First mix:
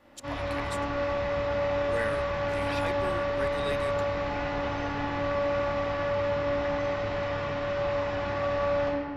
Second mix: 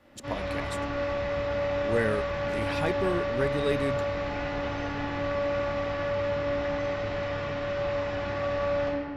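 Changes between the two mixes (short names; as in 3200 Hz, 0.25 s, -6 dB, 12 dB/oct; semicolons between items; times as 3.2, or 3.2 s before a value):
speech: remove HPF 1400 Hz 6 dB/oct; background: add bell 950 Hz -4 dB 0.64 oct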